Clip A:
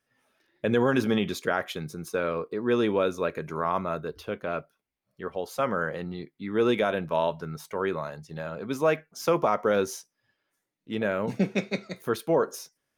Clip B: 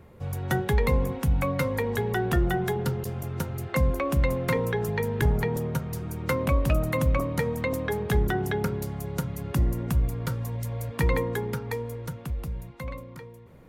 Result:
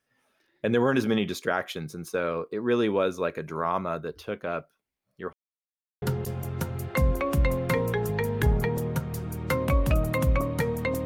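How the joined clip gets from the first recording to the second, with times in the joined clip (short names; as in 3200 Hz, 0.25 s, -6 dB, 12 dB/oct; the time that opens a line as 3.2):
clip A
5.33–6.02 mute
6.02 switch to clip B from 2.81 s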